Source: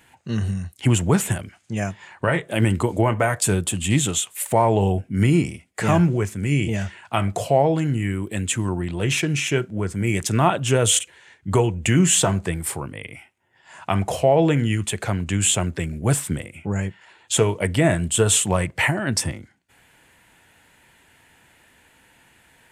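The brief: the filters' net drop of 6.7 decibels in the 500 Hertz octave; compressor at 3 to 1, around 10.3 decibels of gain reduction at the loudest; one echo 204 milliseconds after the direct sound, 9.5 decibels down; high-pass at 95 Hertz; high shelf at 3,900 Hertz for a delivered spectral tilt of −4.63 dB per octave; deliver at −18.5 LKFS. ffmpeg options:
ffmpeg -i in.wav -af "highpass=95,equalizer=frequency=500:width_type=o:gain=-9,highshelf=frequency=3900:gain=-7.5,acompressor=threshold=-29dB:ratio=3,aecho=1:1:204:0.335,volume=13dB" out.wav

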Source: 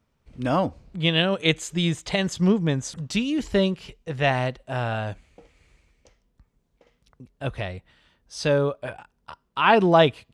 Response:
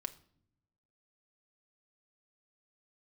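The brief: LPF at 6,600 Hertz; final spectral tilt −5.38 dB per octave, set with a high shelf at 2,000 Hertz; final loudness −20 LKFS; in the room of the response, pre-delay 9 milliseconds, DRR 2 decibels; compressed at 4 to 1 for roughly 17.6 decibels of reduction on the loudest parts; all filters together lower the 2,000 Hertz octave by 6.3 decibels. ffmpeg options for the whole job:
-filter_complex "[0:a]lowpass=6600,highshelf=frequency=2000:gain=-4.5,equalizer=frequency=2000:width_type=o:gain=-5.5,acompressor=threshold=-35dB:ratio=4,asplit=2[link_01][link_02];[1:a]atrim=start_sample=2205,adelay=9[link_03];[link_02][link_03]afir=irnorm=-1:irlink=0,volume=0dB[link_04];[link_01][link_04]amix=inputs=2:normalize=0,volume=16dB"

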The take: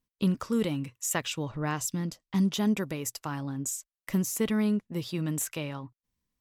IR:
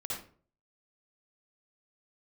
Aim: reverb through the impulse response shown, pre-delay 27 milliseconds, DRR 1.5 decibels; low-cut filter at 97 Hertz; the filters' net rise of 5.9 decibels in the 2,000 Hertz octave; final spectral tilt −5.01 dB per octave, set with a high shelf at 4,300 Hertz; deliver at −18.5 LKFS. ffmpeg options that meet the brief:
-filter_complex "[0:a]highpass=97,equalizer=frequency=2000:width_type=o:gain=8,highshelf=frequency=4300:gain=-4,asplit=2[link_01][link_02];[1:a]atrim=start_sample=2205,adelay=27[link_03];[link_02][link_03]afir=irnorm=-1:irlink=0,volume=-3.5dB[link_04];[link_01][link_04]amix=inputs=2:normalize=0,volume=9dB"

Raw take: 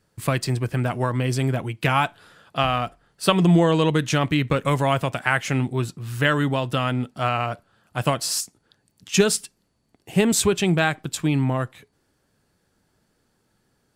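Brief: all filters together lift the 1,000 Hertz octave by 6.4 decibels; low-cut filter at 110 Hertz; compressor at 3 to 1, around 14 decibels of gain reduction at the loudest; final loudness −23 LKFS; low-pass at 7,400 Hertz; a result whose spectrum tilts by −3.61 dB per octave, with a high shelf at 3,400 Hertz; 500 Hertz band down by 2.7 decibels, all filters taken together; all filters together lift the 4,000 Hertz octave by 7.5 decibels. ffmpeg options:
ffmpeg -i in.wav -af "highpass=110,lowpass=7400,equalizer=frequency=500:width_type=o:gain=-6.5,equalizer=frequency=1000:width_type=o:gain=9,highshelf=frequency=3400:gain=5,equalizer=frequency=4000:width_type=o:gain=6.5,acompressor=threshold=-28dB:ratio=3,volume=6.5dB" out.wav

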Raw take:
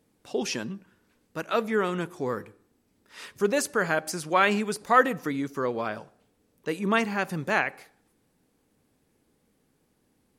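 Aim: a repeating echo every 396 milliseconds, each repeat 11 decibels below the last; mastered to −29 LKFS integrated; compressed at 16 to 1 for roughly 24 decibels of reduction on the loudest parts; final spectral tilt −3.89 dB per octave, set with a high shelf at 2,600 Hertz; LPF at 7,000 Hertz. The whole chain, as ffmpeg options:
ffmpeg -i in.wav -af "lowpass=7000,highshelf=frequency=2600:gain=6.5,acompressor=threshold=-36dB:ratio=16,aecho=1:1:396|792|1188:0.282|0.0789|0.0221,volume=12.5dB" out.wav

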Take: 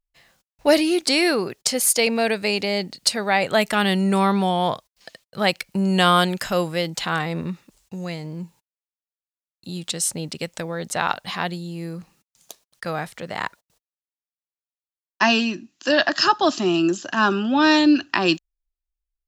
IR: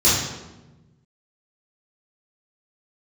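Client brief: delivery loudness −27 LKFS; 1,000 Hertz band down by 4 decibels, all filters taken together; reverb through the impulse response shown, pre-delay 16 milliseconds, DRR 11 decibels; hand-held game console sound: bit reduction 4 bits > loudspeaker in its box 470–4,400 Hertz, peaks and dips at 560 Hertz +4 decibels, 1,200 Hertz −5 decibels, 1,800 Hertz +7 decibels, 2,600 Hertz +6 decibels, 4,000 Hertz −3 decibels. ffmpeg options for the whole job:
-filter_complex "[0:a]equalizer=frequency=1000:width_type=o:gain=-4,asplit=2[link_01][link_02];[1:a]atrim=start_sample=2205,adelay=16[link_03];[link_02][link_03]afir=irnorm=-1:irlink=0,volume=-30.5dB[link_04];[link_01][link_04]amix=inputs=2:normalize=0,acrusher=bits=3:mix=0:aa=0.000001,highpass=470,equalizer=frequency=560:width_type=q:width=4:gain=4,equalizer=frequency=1200:width_type=q:width=4:gain=-5,equalizer=frequency=1800:width_type=q:width=4:gain=7,equalizer=frequency=2600:width_type=q:width=4:gain=6,equalizer=frequency=4000:width_type=q:width=4:gain=-3,lowpass=frequency=4400:width=0.5412,lowpass=frequency=4400:width=1.3066,volume=-6dB"

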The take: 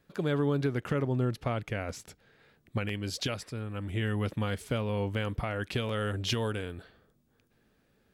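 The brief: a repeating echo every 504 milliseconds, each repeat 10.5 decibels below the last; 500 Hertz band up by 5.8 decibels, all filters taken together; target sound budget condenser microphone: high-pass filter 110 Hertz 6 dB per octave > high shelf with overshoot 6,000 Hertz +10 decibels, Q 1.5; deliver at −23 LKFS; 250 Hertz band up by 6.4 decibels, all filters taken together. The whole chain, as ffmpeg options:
ffmpeg -i in.wav -af "highpass=frequency=110:poles=1,equalizer=frequency=250:width_type=o:gain=7.5,equalizer=frequency=500:width_type=o:gain=5,highshelf=frequency=6000:width_type=q:width=1.5:gain=10,aecho=1:1:504|1008|1512:0.299|0.0896|0.0269,volume=5.5dB" out.wav

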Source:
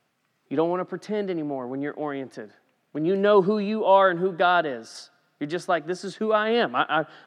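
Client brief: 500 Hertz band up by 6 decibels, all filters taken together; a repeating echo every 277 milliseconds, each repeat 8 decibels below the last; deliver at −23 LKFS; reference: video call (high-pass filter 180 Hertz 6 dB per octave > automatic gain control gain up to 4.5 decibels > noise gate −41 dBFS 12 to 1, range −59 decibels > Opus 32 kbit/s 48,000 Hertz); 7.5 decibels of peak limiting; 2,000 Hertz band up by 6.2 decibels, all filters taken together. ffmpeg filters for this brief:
ffmpeg -i in.wav -af "equalizer=frequency=500:width_type=o:gain=8,equalizer=frequency=2000:width_type=o:gain=8.5,alimiter=limit=-9.5dB:level=0:latency=1,highpass=frequency=180:poles=1,aecho=1:1:277|554|831|1108|1385:0.398|0.159|0.0637|0.0255|0.0102,dynaudnorm=maxgain=4.5dB,agate=range=-59dB:threshold=-41dB:ratio=12,volume=-1.5dB" -ar 48000 -c:a libopus -b:a 32k out.opus

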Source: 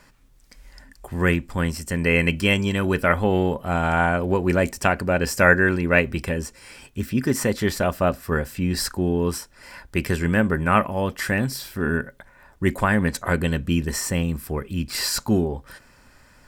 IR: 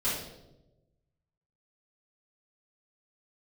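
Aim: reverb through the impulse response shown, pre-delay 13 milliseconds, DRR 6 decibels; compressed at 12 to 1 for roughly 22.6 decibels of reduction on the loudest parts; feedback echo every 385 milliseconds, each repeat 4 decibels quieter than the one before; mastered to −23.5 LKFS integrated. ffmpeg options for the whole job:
-filter_complex "[0:a]acompressor=threshold=-34dB:ratio=12,aecho=1:1:385|770|1155|1540|1925|2310|2695|3080|3465:0.631|0.398|0.25|0.158|0.0994|0.0626|0.0394|0.0249|0.0157,asplit=2[link_01][link_02];[1:a]atrim=start_sample=2205,adelay=13[link_03];[link_02][link_03]afir=irnorm=-1:irlink=0,volume=-14dB[link_04];[link_01][link_04]amix=inputs=2:normalize=0,volume=12dB"

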